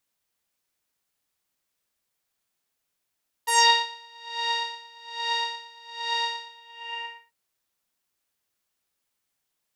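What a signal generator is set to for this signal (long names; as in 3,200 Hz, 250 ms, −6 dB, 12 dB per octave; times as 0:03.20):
subtractive patch with tremolo A#5, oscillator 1 saw, sub −19 dB, noise −25.5 dB, filter lowpass, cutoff 2,200 Hz, Q 3.9, filter envelope 2.5 octaves, filter decay 0.20 s, filter sustain 35%, attack 16 ms, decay 0.38 s, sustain −13 dB, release 0.90 s, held 2.95 s, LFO 1.2 Hz, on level 23 dB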